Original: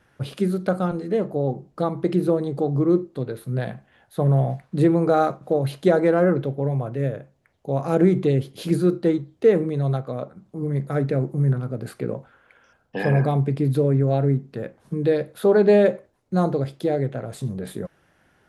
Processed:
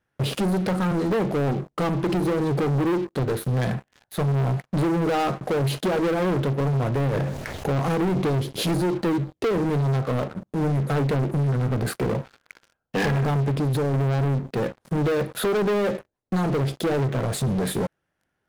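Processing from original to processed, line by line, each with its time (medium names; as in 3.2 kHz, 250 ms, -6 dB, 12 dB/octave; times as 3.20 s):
7.13–7.80 s: level flattener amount 50%
13.51–13.94 s: compression 5:1, threshold -26 dBFS
whole clip: dynamic bell 600 Hz, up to -5 dB, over -34 dBFS, Q 3.1; compression 6:1, threshold -22 dBFS; waveshaping leveller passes 5; trim -6.5 dB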